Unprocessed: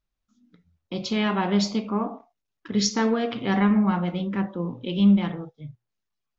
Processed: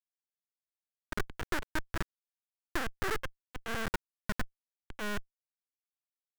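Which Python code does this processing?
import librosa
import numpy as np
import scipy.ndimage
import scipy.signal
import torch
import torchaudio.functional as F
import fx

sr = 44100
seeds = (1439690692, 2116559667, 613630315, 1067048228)

y = fx.sine_speech(x, sr)
y = fx.schmitt(y, sr, flips_db=-25.0)
y = fx.graphic_eq_15(y, sr, hz=(250, 630, 1600), db=(-11, -3, 10))
y = np.maximum(y, 0.0)
y = y * 10.0 ** (-2.0 / 20.0)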